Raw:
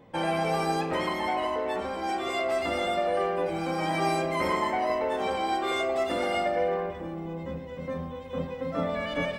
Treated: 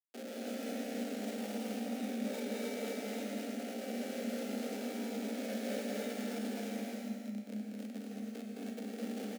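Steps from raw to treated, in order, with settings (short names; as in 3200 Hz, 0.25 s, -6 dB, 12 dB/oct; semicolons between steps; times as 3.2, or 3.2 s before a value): spectral gate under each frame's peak -30 dB strong; band shelf 790 Hz -9.5 dB 2.5 oct, from 6.78 s -16 dB; compressor 12:1, threshold -35 dBFS, peak gain reduction 8 dB; Schmitt trigger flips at -33.5 dBFS; fixed phaser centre 340 Hz, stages 4; frequency shift +200 Hz; resonator 59 Hz, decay 1.9 s, harmonics all, mix 80%; echo 0.215 s -3.5 dB; non-linear reverb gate 0.35 s rising, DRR -1 dB; gain +10.5 dB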